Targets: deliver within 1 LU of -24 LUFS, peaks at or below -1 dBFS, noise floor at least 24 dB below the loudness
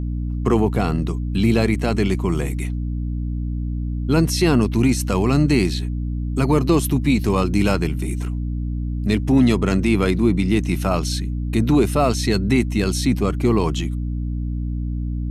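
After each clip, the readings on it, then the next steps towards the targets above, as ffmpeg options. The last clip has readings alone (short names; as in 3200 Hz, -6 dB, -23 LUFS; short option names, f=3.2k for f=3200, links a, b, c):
hum 60 Hz; harmonics up to 300 Hz; hum level -22 dBFS; loudness -20.5 LUFS; peak -4.5 dBFS; loudness target -24.0 LUFS
-> -af "bandreject=f=60:t=h:w=6,bandreject=f=120:t=h:w=6,bandreject=f=180:t=h:w=6,bandreject=f=240:t=h:w=6,bandreject=f=300:t=h:w=6"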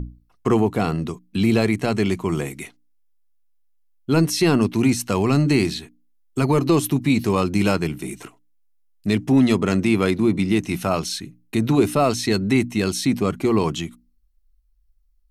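hum none; loudness -20.5 LUFS; peak -5.0 dBFS; loudness target -24.0 LUFS
-> -af "volume=-3.5dB"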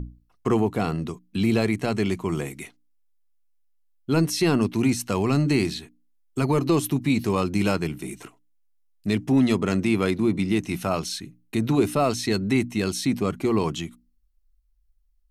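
loudness -24.0 LUFS; peak -8.5 dBFS; noise floor -65 dBFS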